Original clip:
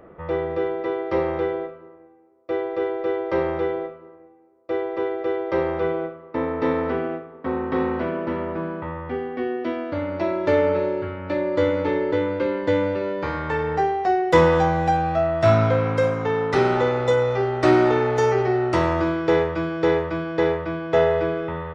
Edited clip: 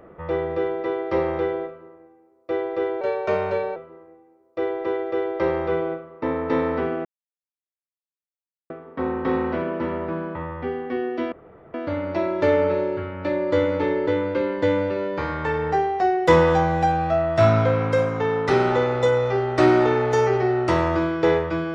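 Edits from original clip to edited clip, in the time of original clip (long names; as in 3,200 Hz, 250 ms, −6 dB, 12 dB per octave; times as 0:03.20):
0:03.01–0:03.88: play speed 116%
0:07.17: splice in silence 1.65 s
0:09.79: splice in room tone 0.42 s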